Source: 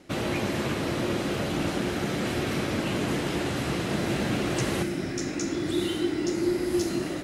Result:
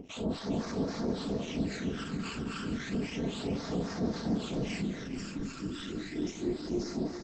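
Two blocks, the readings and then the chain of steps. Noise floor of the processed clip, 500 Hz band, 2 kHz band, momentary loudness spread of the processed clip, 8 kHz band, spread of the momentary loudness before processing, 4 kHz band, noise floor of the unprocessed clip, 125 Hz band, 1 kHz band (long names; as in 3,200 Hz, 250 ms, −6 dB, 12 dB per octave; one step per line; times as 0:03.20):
−43 dBFS, −8.0 dB, −11.0 dB, 5 LU, −11.0 dB, 2 LU, −8.5 dB, −32 dBFS, −6.5 dB, −10.0 dB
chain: stylus tracing distortion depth 0.048 ms
comb filter 4.4 ms, depth 65%
upward compression, threshold −34 dBFS
gain into a clipping stage and back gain 24 dB
two-band tremolo in antiphase 3.7 Hz, depth 100%, crossover 890 Hz
dead-zone distortion −55.5 dBFS
all-pass phaser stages 12, 0.32 Hz, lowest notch 620–2,900 Hz
repeating echo 405 ms, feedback 38%, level −10 dB
Opus 12 kbit/s 48,000 Hz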